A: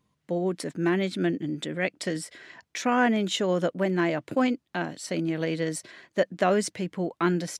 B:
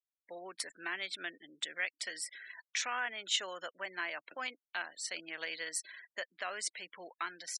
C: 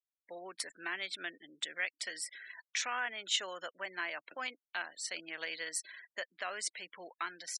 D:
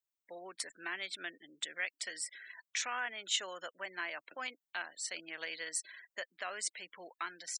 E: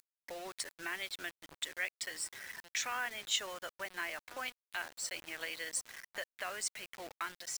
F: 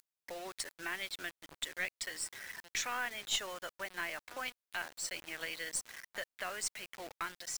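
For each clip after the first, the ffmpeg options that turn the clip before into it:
-af "alimiter=limit=-17.5dB:level=0:latency=1:release=458,afftfilt=real='re*gte(hypot(re,im),0.00562)':imag='im*gte(hypot(re,im),0.00562)':win_size=1024:overlap=0.75,highpass=1.4k"
-af anull
-af "aexciter=amount=1.1:drive=4.9:freq=6.9k,volume=-1.5dB"
-filter_complex "[0:a]asplit=2[a][b];[b]adelay=1399,volume=-17dB,highshelf=f=4k:g=-31.5[c];[a][c]amix=inputs=2:normalize=0,acompressor=mode=upward:threshold=-40dB:ratio=2.5,acrusher=bits=7:mix=0:aa=0.000001"
-af "aeval=exprs='(tanh(17.8*val(0)+0.35)-tanh(0.35))/17.8':c=same,volume=1.5dB"

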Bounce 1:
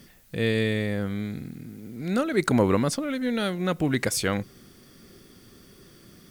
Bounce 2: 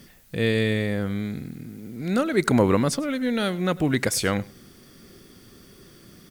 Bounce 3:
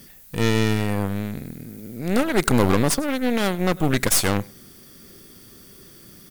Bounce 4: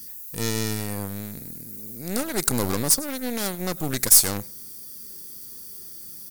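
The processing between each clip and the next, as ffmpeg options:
-af "aecho=1:1:101:0.0841,volume=2dB"
-af "highshelf=f=7.8k:g=11.5,aeval=exprs='0.531*(cos(1*acos(clip(val(0)/0.531,-1,1)))-cos(1*PI/2))+0.0841*(cos(8*acos(clip(val(0)/0.531,-1,1)))-cos(8*PI/2))':c=same"
-af "aexciter=amount=4.6:drive=4.9:freq=4.3k,volume=-7.5dB"

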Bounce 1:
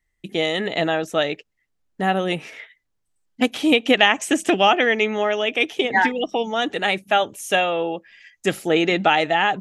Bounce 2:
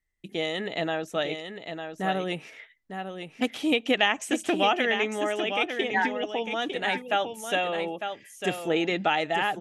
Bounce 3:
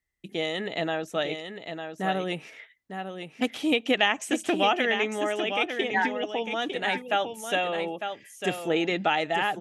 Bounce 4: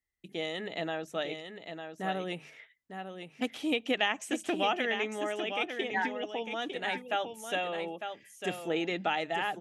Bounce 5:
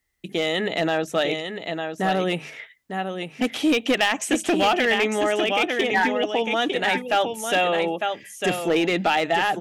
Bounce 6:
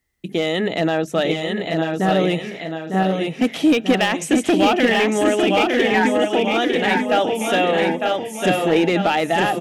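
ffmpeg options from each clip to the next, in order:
-af "aecho=1:1:902:0.422,volume=-7.5dB"
-af "highpass=42"
-af "bandreject=f=50:t=h:w=6,bandreject=f=100:t=h:w=6,bandreject=f=150:t=h:w=6,bandreject=f=200:t=h:w=6,volume=-6dB"
-filter_complex "[0:a]asplit=2[a][b];[b]alimiter=level_in=3dB:limit=-24dB:level=0:latency=1:release=16,volume=-3dB,volume=1dB[c];[a][c]amix=inputs=2:normalize=0,asoftclip=type=hard:threshold=-20.5dB,volume=7dB"
-filter_complex "[0:a]equalizer=f=160:w=0.33:g=6.5,asplit=2[a][b];[b]aecho=0:1:939|1878|2817|3756:0.631|0.177|0.0495|0.0139[c];[a][c]amix=inputs=2:normalize=0"

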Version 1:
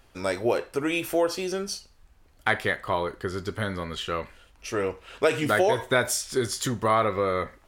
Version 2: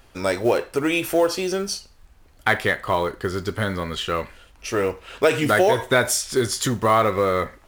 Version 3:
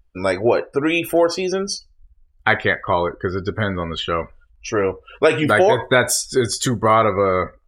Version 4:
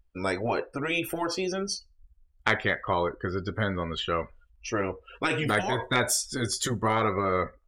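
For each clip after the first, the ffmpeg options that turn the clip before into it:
-filter_complex "[0:a]asplit=2[a][b];[b]asoftclip=type=tanh:threshold=-17dB,volume=-5dB[c];[a][c]amix=inputs=2:normalize=0,acrusher=bits=7:mode=log:mix=0:aa=0.000001,volume=1.5dB"
-af "afftdn=nr=31:nf=-35,volume=3dB"
-af "aeval=exprs='0.891*(cos(1*acos(clip(val(0)/0.891,-1,1)))-cos(1*PI/2))+0.0316*(cos(2*acos(clip(val(0)/0.891,-1,1)))-cos(2*PI/2))+0.126*(cos(3*acos(clip(val(0)/0.891,-1,1)))-cos(3*PI/2))+0.0316*(cos(5*acos(clip(val(0)/0.891,-1,1)))-cos(5*PI/2))':c=same,afftfilt=real='re*lt(hypot(re,im),0.794)':imag='im*lt(hypot(re,im),0.794)':win_size=1024:overlap=0.75,volume=-4dB"

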